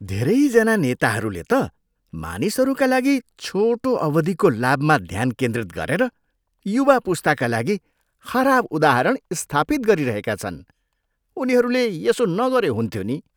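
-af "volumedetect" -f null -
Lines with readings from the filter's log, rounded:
mean_volume: -20.4 dB
max_volume: -1.4 dB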